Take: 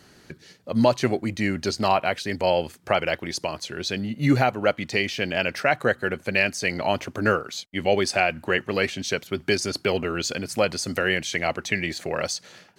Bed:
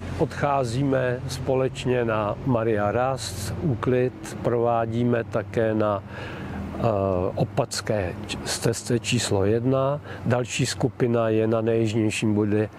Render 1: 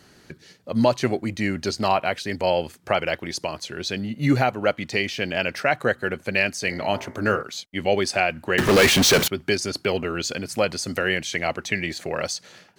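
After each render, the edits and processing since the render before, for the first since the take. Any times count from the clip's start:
0:06.57–0:07.43: hum removal 56.43 Hz, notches 39
0:08.58–0:09.28: power curve on the samples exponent 0.35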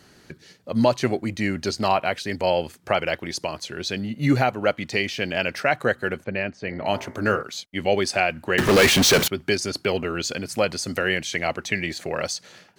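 0:06.24–0:06.86: head-to-tape spacing loss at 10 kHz 35 dB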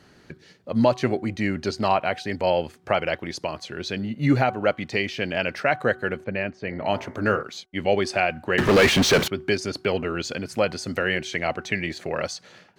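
high-shelf EQ 5,700 Hz −11.5 dB
hum removal 374.9 Hz, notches 4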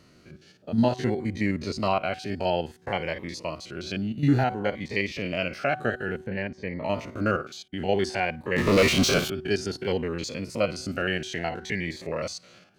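spectrum averaged block by block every 50 ms
phaser whose notches keep moving one way rising 0.57 Hz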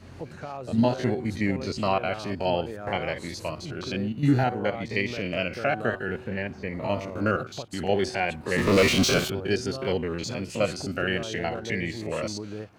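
mix in bed −14.5 dB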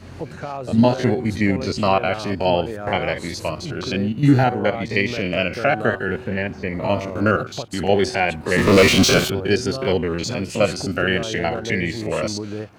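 level +7 dB

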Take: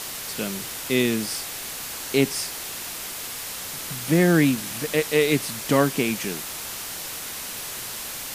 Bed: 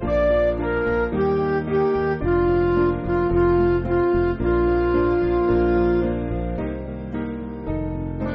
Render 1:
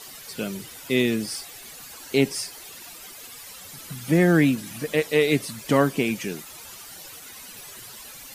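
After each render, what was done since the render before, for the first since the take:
broadband denoise 13 dB, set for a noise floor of −34 dBFS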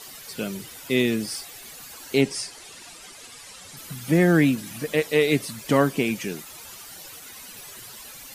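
0:02.21–0:03.77: low-pass filter 10,000 Hz 24 dB per octave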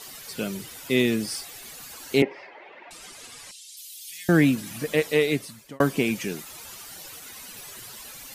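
0:02.22–0:02.91: loudspeaker in its box 340–2,400 Hz, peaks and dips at 360 Hz +5 dB, 580 Hz +9 dB, 870 Hz +7 dB, 1,300 Hz −3 dB, 2,100 Hz +6 dB
0:03.51–0:04.29: inverse Chebyshev high-pass filter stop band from 1,200 Hz, stop band 50 dB
0:05.09–0:05.80: fade out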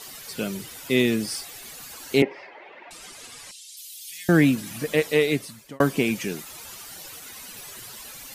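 level +1 dB

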